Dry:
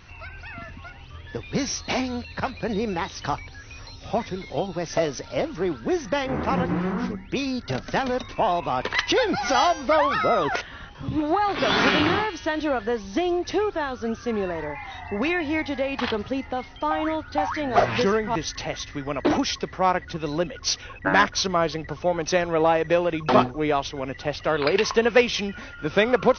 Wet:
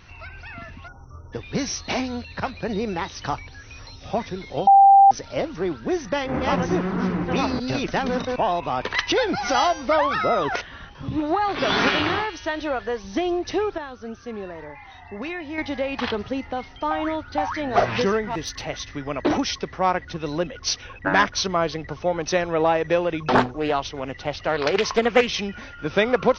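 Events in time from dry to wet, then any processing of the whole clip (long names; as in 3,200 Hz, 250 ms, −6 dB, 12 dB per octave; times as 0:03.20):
0:00.88–0:01.33: time-frequency box erased 1,500–5,400 Hz
0:04.67–0:05.11: beep over 789 Hz −8 dBFS
0:05.71–0:08.36: delay that plays each chunk backwards 629 ms, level −1 dB
0:11.88–0:13.04: parametric band 210 Hz −6.5 dB 1.3 octaves
0:13.78–0:15.58: clip gain −7 dB
0:18.25–0:18.68: tube saturation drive 19 dB, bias 0.2
0:23.35–0:25.27: highs frequency-modulated by the lows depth 0.5 ms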